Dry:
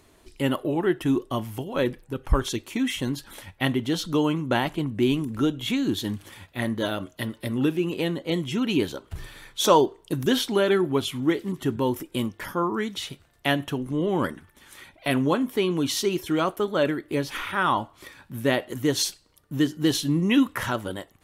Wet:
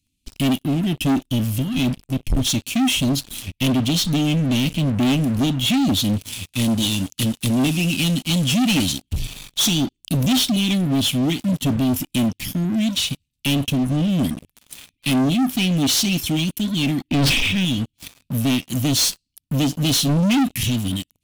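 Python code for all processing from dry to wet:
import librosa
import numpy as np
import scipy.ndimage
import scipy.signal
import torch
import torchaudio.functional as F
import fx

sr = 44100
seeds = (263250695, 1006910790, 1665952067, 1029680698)

y = fx.chain(x, sr, fx.cvsd(bps=64000),
    fx.high_shelf(hz=2800.0, db=6.5), at=(6.28, 9.02))
y = fx.chain(y, sr, fx.transient(attack_db=11, sustain_db=6),
    fx.air_absorb(metres=240.0),
    fx.sustainer(db_per_s=32.0), at=(17.08, 17.65))
y = scipy.signal.sosfilt(scipy.signal.cheby1(4, 1.0, [270.0, 2500.0], 'bandstop', fs=sr, output='sos'), y)
y = fx.leveller(y, sr, passes=5)
y = y * librosa.db_to_amplitude(-3.5)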